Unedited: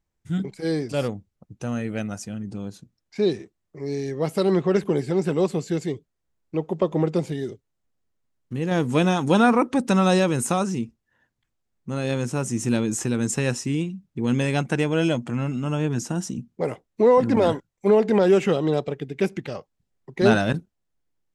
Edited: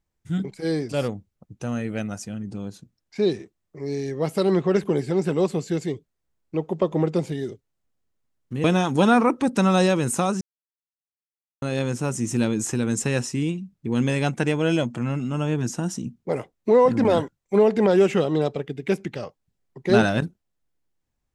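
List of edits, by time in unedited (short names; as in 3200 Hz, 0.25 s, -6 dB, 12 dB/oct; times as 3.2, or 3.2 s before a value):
8.64–8.96 cut
10.73–11.94 mute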